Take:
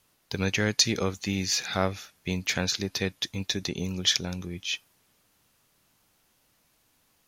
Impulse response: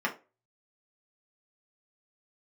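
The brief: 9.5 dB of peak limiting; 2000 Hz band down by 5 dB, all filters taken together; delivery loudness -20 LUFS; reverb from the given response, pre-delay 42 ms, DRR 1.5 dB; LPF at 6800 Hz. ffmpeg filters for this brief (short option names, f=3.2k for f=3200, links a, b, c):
-filter_complex "[0:a]lowpass=6.8k,equalizer=f=2k:t=o:g=-6.5,alimiter=limit=-16.5dB:level=0:latency=1,asplit=2[a][b];[1:a]atrim=start_sample=2205,adelay=42[c];[b][c]afir=irnorm=-1:irlink=0,volume=-11dB[d];[a][d]amix=inputs=2:normalize=0,volume=10dB"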